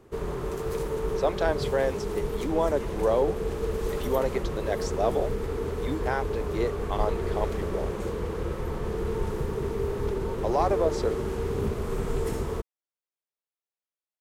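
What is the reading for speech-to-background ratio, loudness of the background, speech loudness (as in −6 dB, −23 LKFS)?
1.0 dB, −31.0 LKFS, −30.0 LKFS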